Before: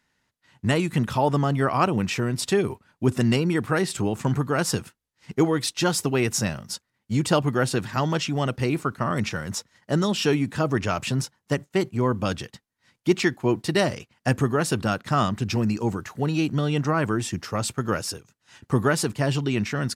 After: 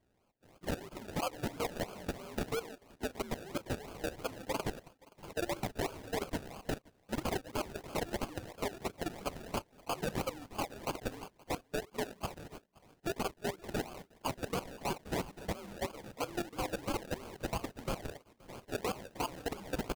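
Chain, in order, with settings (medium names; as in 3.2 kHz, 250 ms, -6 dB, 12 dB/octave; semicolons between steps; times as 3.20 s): frequency axis rescaled in octaves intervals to 128%; high-pass 520 Hz 12 dB/octave; treble shelf 2.2 kHz +7 dB; compression 6:1, threshold -41 dBFS, peak gain reduction 20 dB; decimation with a swept rate 33×, swing 60% 3 Hz; level held to a coarse grid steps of 14 dB; on a send: delay 523 ms -24 dB; on the sum: trim +9 dB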